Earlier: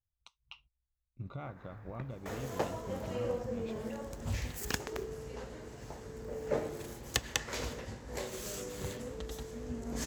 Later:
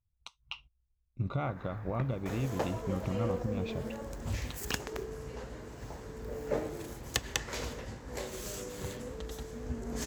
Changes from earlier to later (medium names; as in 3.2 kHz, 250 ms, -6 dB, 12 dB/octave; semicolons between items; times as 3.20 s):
speech +9.5 dB; first sound +6.5 dB